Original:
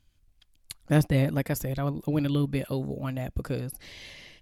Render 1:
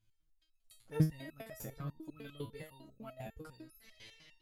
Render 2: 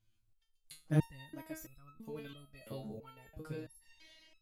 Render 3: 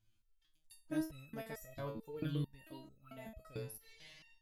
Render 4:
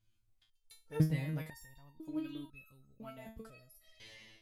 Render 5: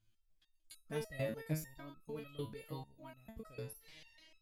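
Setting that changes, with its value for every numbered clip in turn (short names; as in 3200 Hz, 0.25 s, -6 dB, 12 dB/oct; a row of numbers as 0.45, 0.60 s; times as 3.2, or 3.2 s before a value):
stepped resonator, rate: 10, 3, 4.5, 2, 6.7 Hz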